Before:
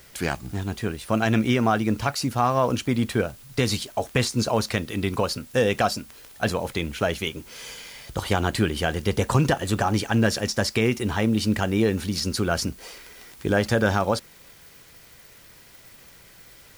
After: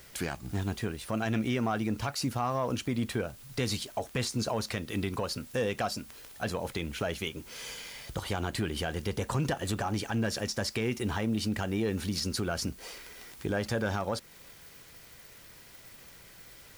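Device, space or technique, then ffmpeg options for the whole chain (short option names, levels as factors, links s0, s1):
soft clipper into limiter: -af "asoftclip=type=tanh:threshold=0.316,alimiter=limit=0.112:level=0:latency=1:release=236,volume=0.75"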